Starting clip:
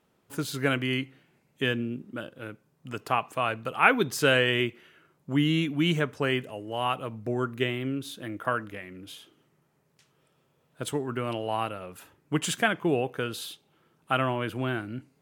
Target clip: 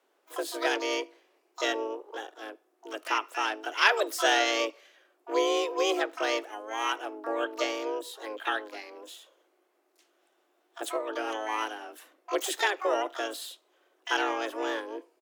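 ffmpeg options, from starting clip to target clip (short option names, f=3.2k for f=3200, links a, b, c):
-filter_complex "[0:a]afreqshift=210,asplit=3[a][b][c];[b]asetrate=37084,aresample=44100,atempo=1.18921,volume=-12dB[d];[c]asetrate=88200,aresample=44100,atempo=0.5,volume=-7dB[e];[a][d][e]amix=inputs=3:normalize=0,volume=-3dB"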